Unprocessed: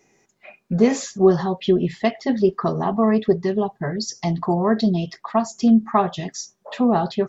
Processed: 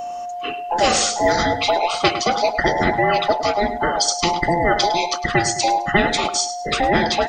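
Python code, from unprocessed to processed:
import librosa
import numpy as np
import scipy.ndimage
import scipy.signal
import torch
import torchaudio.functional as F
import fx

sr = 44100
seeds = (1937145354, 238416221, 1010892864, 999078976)

p1 = fx.band_invert(x, sr, width_hz=1000)
p2 = p1 + 10.0 ** (-30.0 / 20.0) * np.sin(2.0 * np.pi * 710.0 * np.arange(len(p1)) / sr)
p3 = p2 + fx.echo_feedback(p2, sr, ms=105, feedback_pct=27, wet_db=-17.5, dry=0)
p4 = fx.spectral_comp(p3, sr, ratio=2.0)
y = F.gain(torch.from_numpy(p4), 1.5).numpy()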